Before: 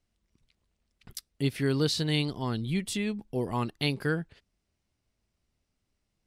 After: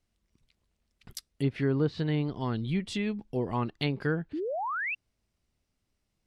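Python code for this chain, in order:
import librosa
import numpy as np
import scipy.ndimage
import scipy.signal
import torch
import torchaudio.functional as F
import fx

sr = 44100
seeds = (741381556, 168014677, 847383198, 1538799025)

y = fx.env_lowpass_down(x, sr, base_hz=1300.0, full_db=-22.5)
y = fx.spec_paint(y, sr, seeds[0], shape='rise', start_s=4.33, length_s=0.62, low_hz=280.0, high_hz=2800.0, level_db=-32.0)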